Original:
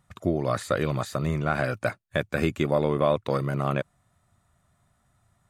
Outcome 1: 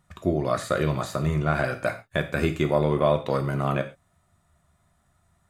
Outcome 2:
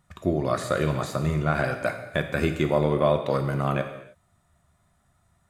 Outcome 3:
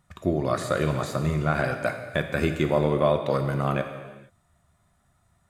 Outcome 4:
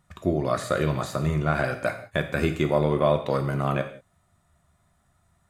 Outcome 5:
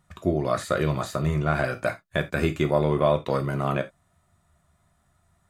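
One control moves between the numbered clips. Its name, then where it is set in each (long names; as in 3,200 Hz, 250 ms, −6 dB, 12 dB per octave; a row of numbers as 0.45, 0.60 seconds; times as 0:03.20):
reverb whose tail is shaped and stops, gate: 150, 340, 500, 210, 100 milliseconds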